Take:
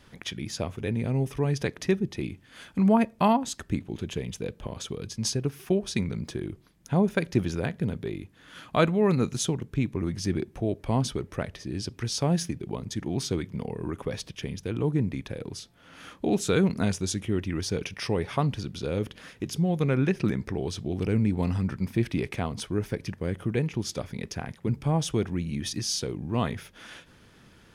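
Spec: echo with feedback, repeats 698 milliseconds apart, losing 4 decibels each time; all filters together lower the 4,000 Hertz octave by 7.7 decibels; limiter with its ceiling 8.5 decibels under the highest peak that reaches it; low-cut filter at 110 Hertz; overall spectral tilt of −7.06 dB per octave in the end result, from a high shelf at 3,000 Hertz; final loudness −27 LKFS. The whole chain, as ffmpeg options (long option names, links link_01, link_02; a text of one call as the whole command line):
ffmpeg -i in.wav -af "highpass=110,highshelf=frequency=3000:gain=-6.5,equalizer=frequency=4000:width_type=o:gain=-4.5,alimiter=limit=-18dB:level=0:latency=1,aecho=1:1:698|1396|2094|2792|3490|4188|4886|5584|6282:0.631|0.398|0.25|0.158|0.0994|0.0626|0.0394|0.0249|0.0157,volume=3dB" out.wav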